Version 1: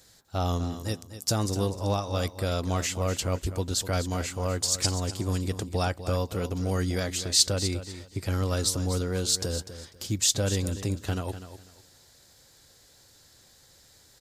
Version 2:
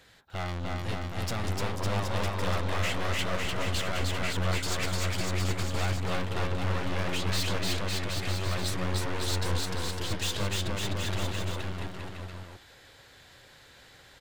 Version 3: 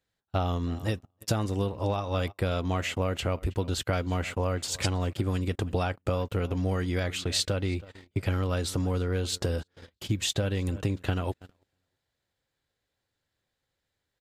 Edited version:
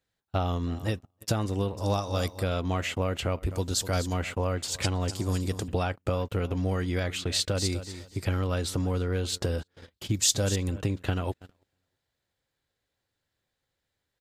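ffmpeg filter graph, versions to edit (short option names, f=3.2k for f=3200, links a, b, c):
-filter_complex "[0:a]asplit=5[a][b][c][d][e];[2:a]asplit=6[f][g][h][i][j][k];[f]atrim=end=1.772[l];[a]atrim=start=1.768:end=2.432[m];[g]atrim=start=2.428:end=3.512[n];[b]atrim=start=3.508:end=4.132[o];[h]atrim=start=4.128:end=5.082[p];[c]atrim=start=5.078:end=5.682[q];[i]atrim=start=5.678:end=7.552[r];[d]atrim=start=7.548:end=8.252[s];[j]atrim=start=8.248:end=10.142[t];[e]atrim=start=10.138:end=10.562[u];[k]atrim=start=10.558[v];[l][m]acrossfade=d=0.004:c1=hsin:c2=hsin[w];[w][n]acrossfade=d=0.004:c1=hsin:c2=hsin[x];[x][o]acrossfade=d=0.004:c1=hsin:c2=hsin[y];[y][p]acrossfade=d=0.004:c1=hsin:c2=hsin[z];[z][q]acrossfade=d=0.004:c1=hsin:c2=hsin[aa];[aa][r]acrossfade=d=0.004:c1=hsin:c2=hsin[ab];[ab][s]acrossfade=d=0.004:c1=hsin:c2=hsin[ac];[ac][t]acrossfade=d=0.004:c1=hsin:c2=hsin[ad];[ad][u]acrossfade=d=0.004:c1=hsin:c2=hsin[ae];[ae][v]acrossfade=d=0.004:c1=hsin:c2=hsin"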